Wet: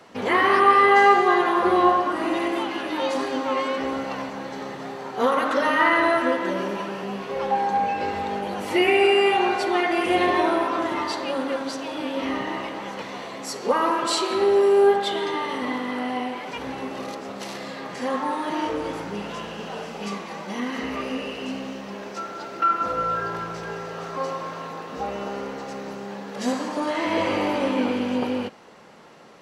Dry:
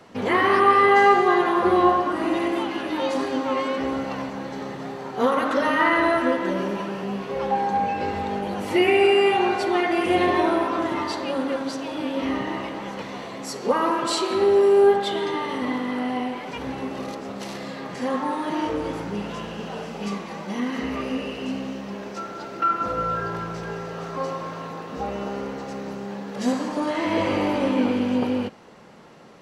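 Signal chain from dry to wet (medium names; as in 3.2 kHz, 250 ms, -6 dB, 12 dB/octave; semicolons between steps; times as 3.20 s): bass shelf 270 Hz -8 dB; trim +1.5 dB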